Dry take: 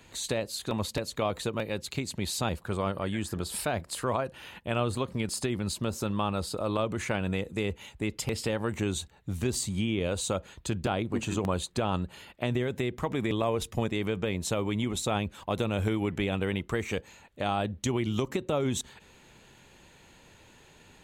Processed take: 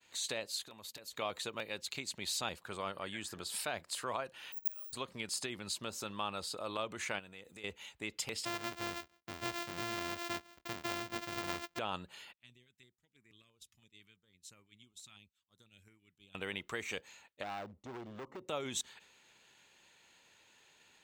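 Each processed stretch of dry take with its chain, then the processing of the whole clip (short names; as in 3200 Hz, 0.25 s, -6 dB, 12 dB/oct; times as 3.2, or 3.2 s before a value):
0.63–1.13 gate -42 dBFS, range -8 dB + bell 13000 Hz +13.5 dB 0.39 oct + compressor 5:1, threshold -39 dBFS
4.52–4.93 low-pass opened by the level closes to 440 Hz, open at -25 dBFS + flipped gate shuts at -28 dBFS, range -30 dB + careless resampling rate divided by 4×, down filtered, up zero stuff
7.19–7.64 high shelf 12000 Hz +10 dB + compressor 10:1, threshold -37 dBFS
8.45–11.79 sample sorter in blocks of 128 samples + high shelf 4300 Hz -7 dB
12.33–16.35 passive tone stack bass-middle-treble 6-0-2 + stepped notch 6 Hz 470–3400 Hz
17.43–18.48 polynomial smoothing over 65 samples + hard clip -29.5 dBFS
whole clip: tilt +4 dB/oct; expander -48 dBFS; bell 12000 Hz -14.5 dB 1.3 oct; gain -7 dB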